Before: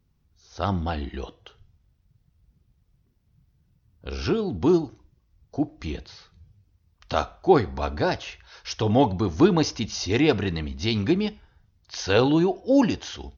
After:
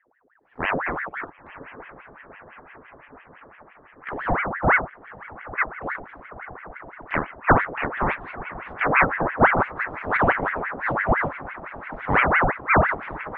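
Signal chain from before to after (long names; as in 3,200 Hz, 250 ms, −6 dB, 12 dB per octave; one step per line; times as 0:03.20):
low-pass filter 1,100 Hz 24 dB per octave
on a send: feedback delay with all-pass diffusion 972 ms, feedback 70%, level −15 dB
on the sum: ring modulator whose carrier an LFO sweeps 1,100 Hz, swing 70%, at 5.9 Hz
level +3.5 dB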